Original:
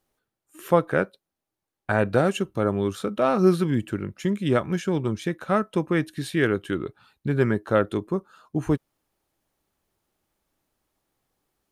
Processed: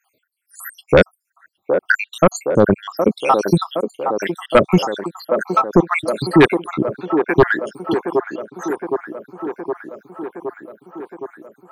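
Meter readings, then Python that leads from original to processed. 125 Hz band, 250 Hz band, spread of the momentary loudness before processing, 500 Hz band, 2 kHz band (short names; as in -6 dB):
+3.0 dB, +5.5 dB, 10 LU, +7.5 dB, +9.5 dB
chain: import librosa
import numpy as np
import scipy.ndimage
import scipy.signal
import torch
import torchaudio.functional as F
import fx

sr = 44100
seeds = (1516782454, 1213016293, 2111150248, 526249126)

y = fx.spec_dropout(x, sr, seeds[0], share_pct=83)
y = scipy.signal.sosfilt(scipy.signal.butter(2, 130.0, 'highpass', fs=sr, output='sos'), y)
y = fx.fold_sine(y, sr, drive_db=8, ceiling_db=-8.5)
y = fx.echo_wet_bandpass(y, sr, ms=766, feedback_pct=70, hz=560.0, wet_db=-5.5)
y = y * librosa.db_to_amplitude(5.0)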